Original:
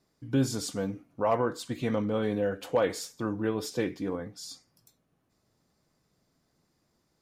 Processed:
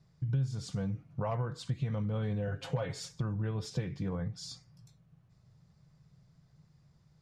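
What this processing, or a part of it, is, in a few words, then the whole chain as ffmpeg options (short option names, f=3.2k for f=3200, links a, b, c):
jukebox: -filter_complex "[0:a]asettb=1/sr,asplit=3[a][b][c];[a]atrim=end=2.474[d];[b]atrim=start=2.47:end=3.09,asetpts=PTS-STARTPTS,afade=t=in:d=0.004:c=qsin,afade=t=out:st=0.616:d=0.004:c=qsin,aecho=1:1:7.4:0.74,atrim=end_sample=27342[e];[c]atrim=start=3.086[f];[d][e]acrossfade=d=0.004:c1=hsin:c2=qsin[g];[g][f]acrossfade=d=0.004:c1=qsin:c2=hsin,lowpass=6.4k,lowshelf=f=200:t=q:w=3:g=10.5,acompressor=threshold=-32dB:ratio=4"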